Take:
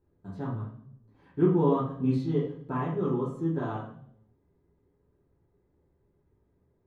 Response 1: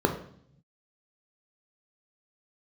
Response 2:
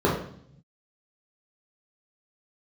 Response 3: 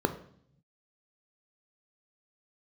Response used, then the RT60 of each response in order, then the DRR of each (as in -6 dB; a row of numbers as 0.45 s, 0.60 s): 2; 0.60 s, 0.60 s, 0.60 s; 3.0 dB, -6.5 dB, 7.0 dB